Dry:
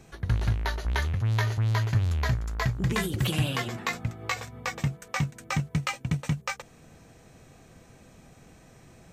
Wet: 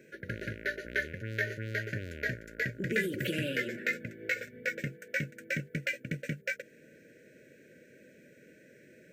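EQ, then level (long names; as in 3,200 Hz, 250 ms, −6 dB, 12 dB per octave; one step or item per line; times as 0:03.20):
high-pass filter 310 Hz 12 dB per octave
linear-phase brick-wall band-stop 630–1,400 Hz
flat-topped bell 6,100 Hz −13 dB 2.3 octaves
+2.5 dB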